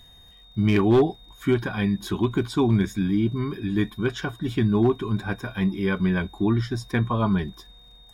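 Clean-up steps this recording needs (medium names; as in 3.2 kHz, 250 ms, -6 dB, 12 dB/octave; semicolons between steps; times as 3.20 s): clip repair -12 dBFS; de-click; band-stop 3.7 kHz, Q 30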